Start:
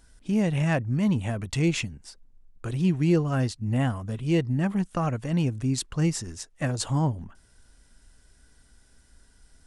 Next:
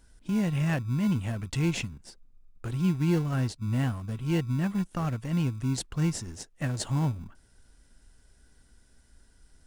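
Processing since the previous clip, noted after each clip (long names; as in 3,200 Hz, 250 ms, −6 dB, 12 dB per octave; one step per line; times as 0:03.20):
dynamic equaliser 490 Hz, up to −5 dB, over −40 dBFS, Q 1
in parallel at −9 dB: decimation without filtering 36×
on the sum: level −4 dB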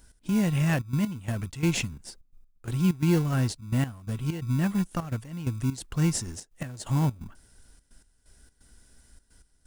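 high-shelf EQ 7,400 Hz +8.5 dB
gate pattern "x.xxxxx.x..x" 129 BPM −12 dB
level +2.5 dB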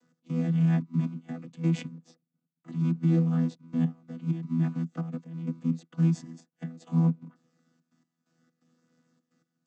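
channel vocoder with a chord as carrier bare fifth, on E3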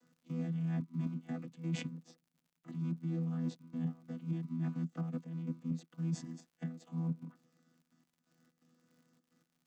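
reversed playback
downward compressor 12 to 1, threshold −31 dBFS, peak gain reduction 12.5 dB
reversed playback
surface crackle 81 per second −59 dBFS
level −2 dB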